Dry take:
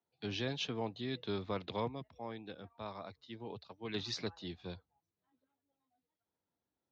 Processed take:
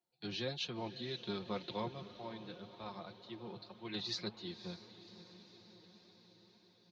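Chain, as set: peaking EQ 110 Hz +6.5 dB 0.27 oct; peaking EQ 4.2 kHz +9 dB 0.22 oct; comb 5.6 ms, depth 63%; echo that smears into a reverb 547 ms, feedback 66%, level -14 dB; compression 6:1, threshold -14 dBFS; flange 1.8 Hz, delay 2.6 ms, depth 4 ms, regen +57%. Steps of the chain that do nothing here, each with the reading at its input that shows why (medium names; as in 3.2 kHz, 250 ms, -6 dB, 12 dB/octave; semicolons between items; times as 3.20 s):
compression, threshold -14 dBFS: peak at its input -21.5 dBFS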